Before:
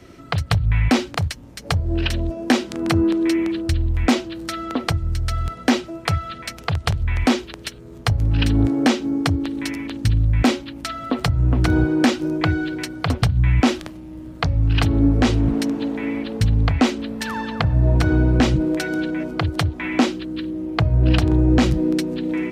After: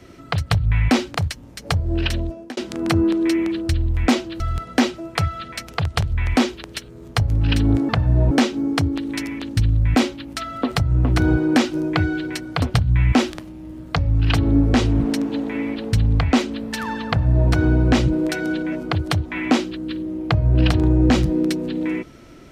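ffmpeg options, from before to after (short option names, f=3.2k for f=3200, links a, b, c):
-filter_complex "[0:a]asplit=5[a][b][c][d][e];[a]atrim=end=2.57,asetpts=PTS-STARTPTS,afade=t=out:st=2.17:d=0.4[f];[b]atrim=start=2.57:end=4.402,asetpts=PTS-STARTPTS,afade=t=in:d=0.004:c=hsin[g];[c]atrim=start=5.298:end=8.792[h];[d]atrim=start=17.558:end=17.982[i];[e]atrim=start=8.788[j];[f][g]concat=n=2:v=0:a=1[k];[k][h]acrossfade=d=0.004:c1=hsin:c2=hsin[l];[l][i]acrossfade=d=0.004:c1=hsin:c2=hsin[m];[m][j]acrossfade=d=0.004:c1=hsin:c2=hsin"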